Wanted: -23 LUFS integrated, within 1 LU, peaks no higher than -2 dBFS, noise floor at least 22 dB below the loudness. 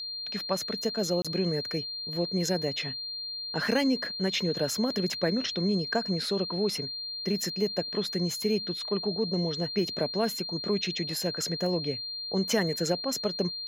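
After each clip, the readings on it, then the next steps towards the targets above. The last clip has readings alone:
dropouts 1; longest dropout 26 ms; steady tone 4200 Hz; tone level -34 dBFS; loudness -29.0 LUFS; peak -12.5 dBFS; loudness target -23.0 LUFS
-> interpolate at 1.22, 26 ms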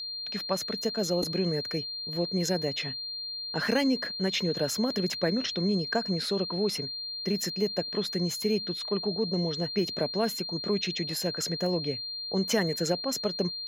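dropouts 0; steady tone 4200 Hz; tone level -34 dBFS
-> notch 4200 Hz, Q 30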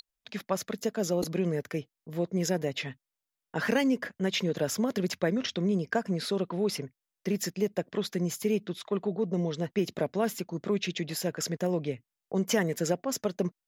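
steady tone none; loudness -31.0 LUFS; peak -13.5 dBFS; loudness target -23.0 LUFS
-> gain +8 dB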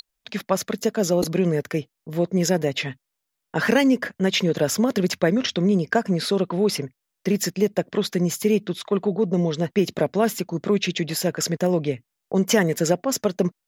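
loudness -23.0 LUFS; peak -5.5 dBFS; noise floor -81 dBFS

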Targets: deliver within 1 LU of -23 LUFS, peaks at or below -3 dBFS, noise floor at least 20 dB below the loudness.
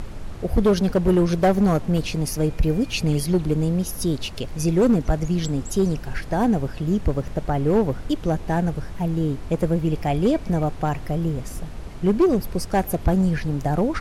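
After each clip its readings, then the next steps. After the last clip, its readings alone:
clipped 1.5%; flat tops at -12.0 dBFS; noise floor -35 dBFS; noise floor target -43 dBFS; loudness -22.5 LUFS; peak -12.0 dBFS; loudness target -23.0 LUFS
-> clip repair -12 dBFS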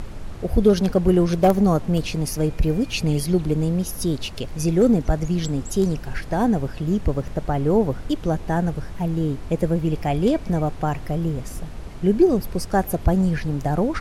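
clipped 0.0%; noise floor -35 dBFS; noise floor target -42 dBFS
-> noise print and reduce 7 dB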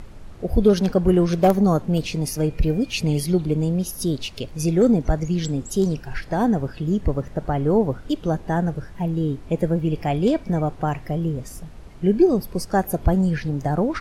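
noise floor -40 dBFS; noise floor target -42 dBFS
-> noise print and reduce 6 dB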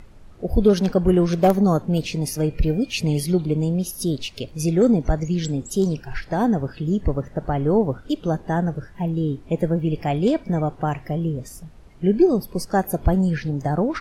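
noise floor -45 dBFS; loudness -22.0 LUFS; peak -4.5 dBFS; loudness target -23.0 LUFS
-> gain -1 dB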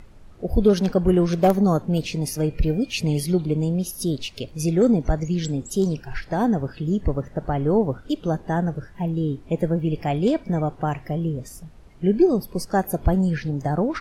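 loudness -23.0 LUFS; peak -5.5 dBFS; noise floor -46 dBFS

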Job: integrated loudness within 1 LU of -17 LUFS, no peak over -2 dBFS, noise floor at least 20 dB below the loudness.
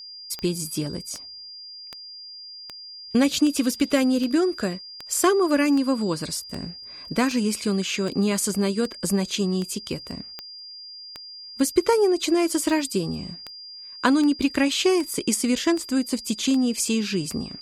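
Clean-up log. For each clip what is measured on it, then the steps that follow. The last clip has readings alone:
clicks 23; steady tone 4800 Hz; tone level -38 dBFS; loudness -23.5 LUFS; peak -5.0 dBFS; loudness target -17.0 LUFS
-> de-click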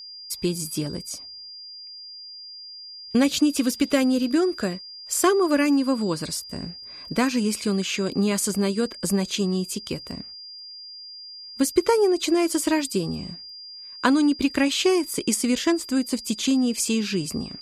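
clicks 0; steady tone 4800 Hz; tone level -38 dBFS
-> notch 4800 Hz, Q 30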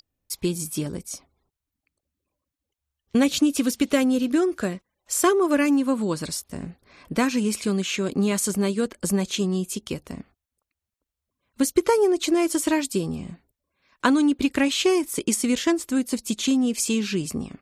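steady tone none; loudness -23.5 LUFS; peak -5.0 dBFS; loudness target -17.0 LUFS
-> gain +6.5 dB; limiter -2 dBFS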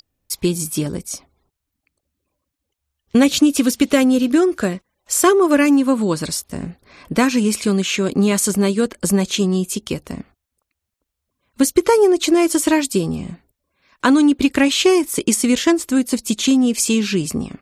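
loudness -17.0 LUFS; peak -2.0 dBFS; noise floor -79 dBFS

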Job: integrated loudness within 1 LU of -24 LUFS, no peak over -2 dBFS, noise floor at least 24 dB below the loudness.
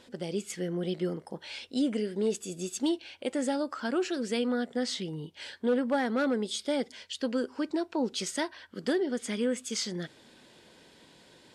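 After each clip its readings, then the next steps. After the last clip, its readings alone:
loudness -32.0 LUFS; peak -19.5 dBFS; loudness target -24.0 LUFS
-> gain +8 dB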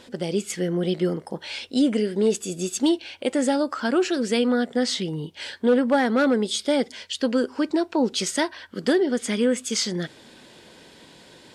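loudness -24.0 LUFS; peak -11.5 dBFS; noise floor -50 dBFS

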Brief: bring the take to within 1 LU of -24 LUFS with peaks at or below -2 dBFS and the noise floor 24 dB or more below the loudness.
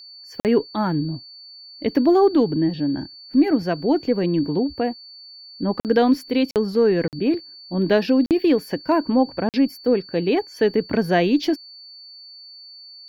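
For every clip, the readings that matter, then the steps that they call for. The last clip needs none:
dropouts 6; longest dropout 48 ms; steady tone 4500 Hz; tone level -40 dBFS; loudness -21.0 LUFS; peak -5.5 dBFS; loudness target -24.0 LUFS
-> interpolate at 0.4/5.8/6.51/7.08/8.26/9.49, 48 ms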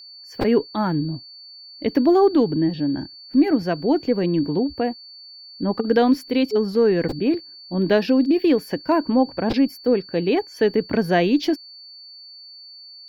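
dropouts 0; steady tone 4500 Hz; tone level -40 dBFS
-> notch 4500 Hz, Q 30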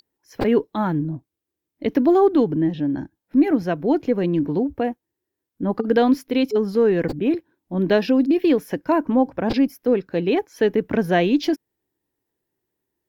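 steady tone none; loudness -21.0 LUFS; peak -5.5 dBFS; loudness target -24.0 LUFS
-> gain -3 dB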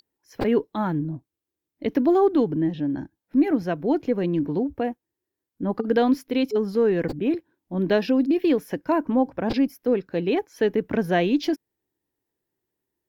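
loudness -24.0 LUFS; peak -8.5 dBFS; noise floor -86 dBFS

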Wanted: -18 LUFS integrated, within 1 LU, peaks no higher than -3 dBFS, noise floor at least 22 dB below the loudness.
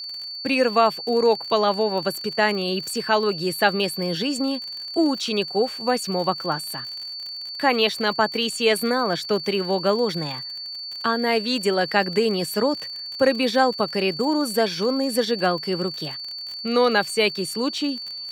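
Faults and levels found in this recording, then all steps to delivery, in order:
ticks 49/s; steady tone 4500 Hz; tone level -31 dBFS; loudness -22.5 LUFS; peak -3.5 dBFS; loudness target -18.0 LUFS
-> de-click; notch 4500 Hz, Q 30; gain +4.5 dB; limiter -3 dBFS

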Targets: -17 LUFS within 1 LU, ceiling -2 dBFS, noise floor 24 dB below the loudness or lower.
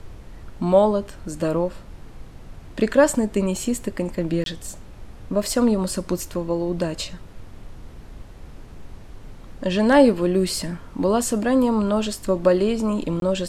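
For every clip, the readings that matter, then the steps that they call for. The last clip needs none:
dropouts 2; longest dropout 22 ms; noise floor -42 dBFS; noise floor target -46 dBFS; loudness -21.5 LUFS; peak -3.0 dBFS; loudness target -17.0 LUFS
-> interpolate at 4.44/13.2, 22 ms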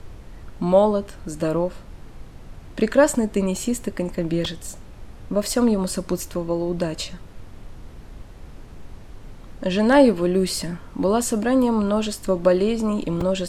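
dropouts 0; noise floor -42 dBFS; noise floor target -46 dBFS
-> noise print and reduce 6 dB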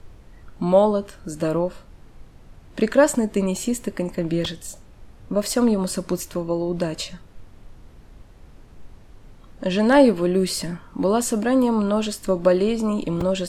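noise floor -47 dBFS; loudness -21.5 LUFS; peak -3.0 dBFS; loudness target -17.0 LUFS
-> gain +4.5 dB; limiter -2 dBFS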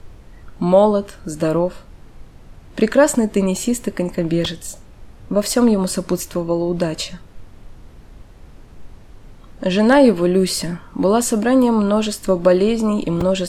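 loudness -17.5 LUFS; peak -2.0 dBFS; noise floor -43 dBFS

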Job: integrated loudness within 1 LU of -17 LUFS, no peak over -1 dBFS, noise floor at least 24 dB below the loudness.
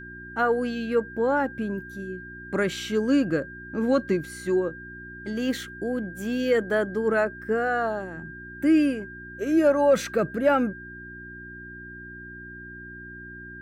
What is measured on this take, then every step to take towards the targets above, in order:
hum 60 Hz; harmonics up to 360 Hz; hum level -44 dBFS; steady tone 1600 Hz; tone level -40 dBFS; loudness -25.5 LUFS; peak -11.0 dBFS; loudness target -17.0 LUFS
-> de-hum 60 Hz, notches 6; notch 1600 Hz, Q 30; gain +8.5 dB

